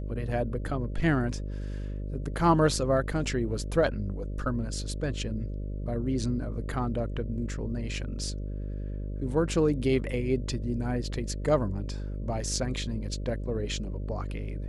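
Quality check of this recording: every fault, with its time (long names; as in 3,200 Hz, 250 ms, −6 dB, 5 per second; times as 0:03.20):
mains buzz 50 Hz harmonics 12 −34 dBFS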